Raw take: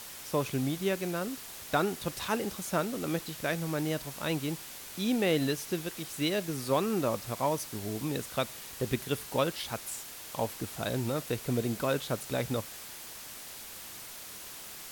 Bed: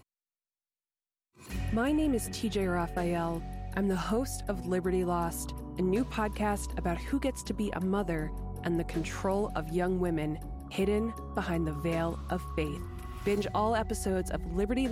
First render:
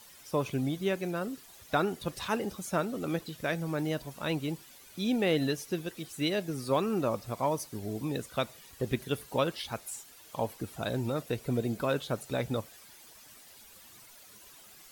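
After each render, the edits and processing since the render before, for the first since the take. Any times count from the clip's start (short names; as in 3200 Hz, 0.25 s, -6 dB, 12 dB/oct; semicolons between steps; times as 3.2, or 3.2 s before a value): denoiser 12 dB, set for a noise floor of -45 dBFS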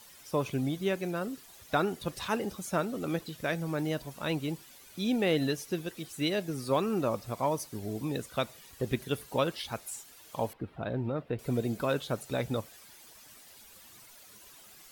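10.53–11.39 air absorption 450 m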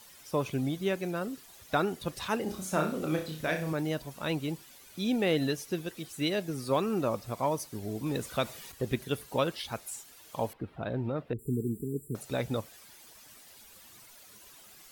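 2.43–3.73 flutter echo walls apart 5.5 m, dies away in 0.38 s; 8.06–8.72 G.711 law mismatch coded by mu; 11.33–12.15 brick-wall FIR band-stop 460–7200 Hz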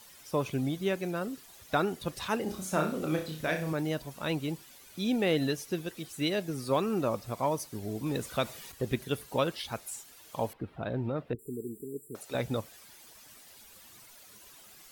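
11.35–12.35 tone controls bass -15 dB, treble -1 dB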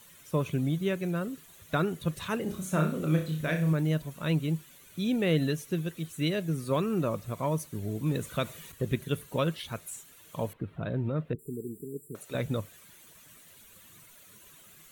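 thirty-one-band EQ 100 Hz +6 dB, 160 Hz +10 dB, 800 Hz -9 dB, 5000 Hz -11 dB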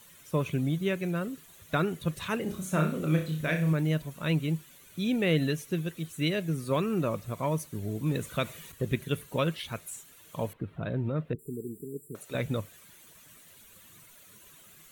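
dynamic EQ 2300 Hz, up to +4 dB, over -48 dBFS, Q 1.8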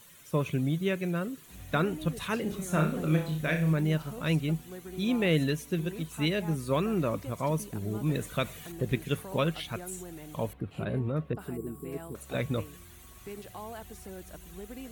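add bed -13.5 dB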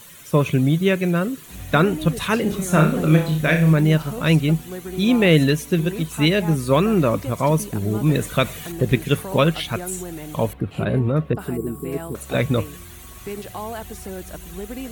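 gain +11 dB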